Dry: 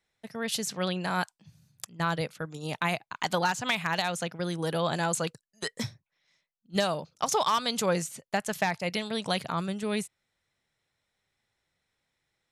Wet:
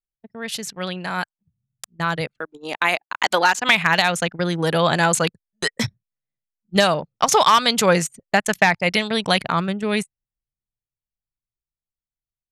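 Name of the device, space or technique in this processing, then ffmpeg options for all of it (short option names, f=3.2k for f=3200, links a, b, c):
voice memo with heavy noise removal: -filter_complex "[0:a]asettb=1/sr,asplit=3[a][b][c];[a]atrim=end=2.374[d];[b]atrim=start=2.37:end=3.69,asetpts=PTS-STARTPTS,afade=t=in:d=0.004:c=qsin,afade=t=out:st=1.316:d=0.004:c=qsin,highpass=f=250:w=0.5412,highpass=f=250:w=1.3066[e];[c]atrim=start=3.686[f];[d][e]acrossfade=d=0.004:c1=hsin:c2=qsin[g];[g][f]acrossfade=d=0.004:c1=qsin:c2=hsin,adynamicequalizer=threshold=0.00794:dfrequency=2000:dqfactor=0.99:tfrequency=2000:tqfactor=0.99:attack=5:release=100:ratio=0.375:range=2.5:mode=boostabove:tftype=bell,anlmdn=1.58,dynaudnorm=f=250:g=21:m=11.5dB,volume=1dB"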